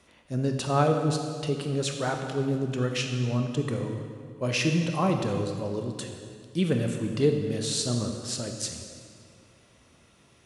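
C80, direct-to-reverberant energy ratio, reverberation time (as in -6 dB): 6.0 dB, 3.5 dB, 2.2 s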